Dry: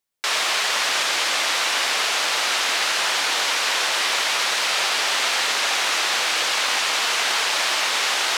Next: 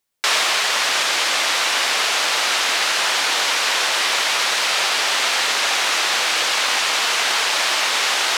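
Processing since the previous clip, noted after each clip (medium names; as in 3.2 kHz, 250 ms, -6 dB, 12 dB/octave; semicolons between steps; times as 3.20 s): gain riding 0.5 s; trim +2.5 dB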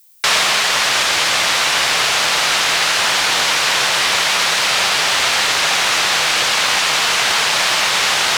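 octave divider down 2 oct, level -1 dB; added noise violet -53 dBFS; trim +3.5 dB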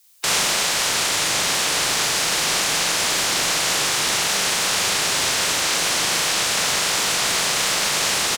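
spectral peaks clipped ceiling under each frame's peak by 15 dB; doubling 40 ms -3 dB; trim -6.5 dB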